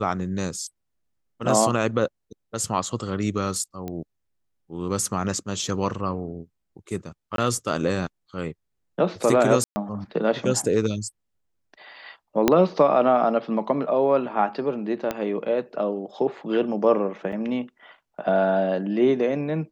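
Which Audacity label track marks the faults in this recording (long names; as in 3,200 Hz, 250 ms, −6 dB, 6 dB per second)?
3.880000	3.880000	click −19 dBFS
7.360000	7.380000	drop-out 22 ms
9.640000	9.760000	drop-out 120 ms
12.480000	12.480000	click −3 dBFS
15.110000	15.110000	click −12 dBFS
17.320000	17.330000	drop-out 5.8 ms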